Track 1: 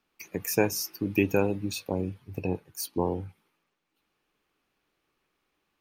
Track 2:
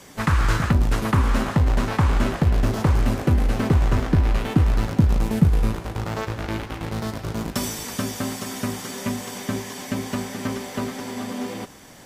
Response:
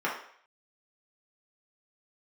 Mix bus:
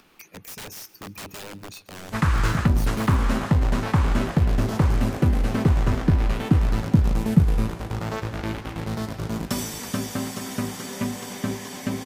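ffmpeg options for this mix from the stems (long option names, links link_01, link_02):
-filter_complex "[0:a]acompressor=mode=upward:threshold=-31dB:ratio=2.5,aeval=exprs='(mod(17.8*val(0)+1,2)-1)/17.8':channel_layout=same,volume=-6.5dB,asplit=2[link_01][link_02];[link_02]volume=-20.5dB[link_03];[1:a]adelay=1950,volume=-2dB[link_04];[link_03]aecho=0:1:137|274|411|548|685|822:1|0.45|0.202|0.0911|0.041|0.0185[link_05];[link_01][link_04][link_05]amix=inputs=3:normalize=0,equalizer=frequency=170:width_type=o:width=1:gain=3"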